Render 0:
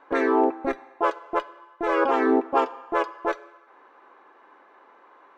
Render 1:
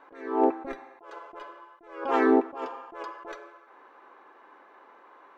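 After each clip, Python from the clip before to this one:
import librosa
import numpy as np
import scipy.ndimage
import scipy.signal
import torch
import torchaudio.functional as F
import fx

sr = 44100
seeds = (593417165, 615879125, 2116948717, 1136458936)

y = fx.attack_slew(x, sr, db_per_s=100.0)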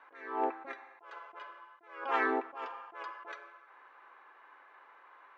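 y = fx.bandpass_q(x, sr, hz=2000.0, q=0.89)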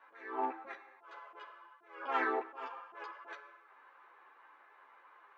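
y = fx.ensemble(x, sr)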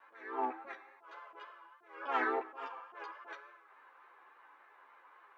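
y = fx.vibrato(x, sr, rate_hz=3.5, depth_cents=42.0)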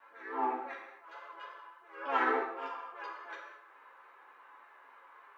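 y = fx.rev_gated(x, sr, seeds[0], gate_ms=250, shape='falling', drr_db=-1.0)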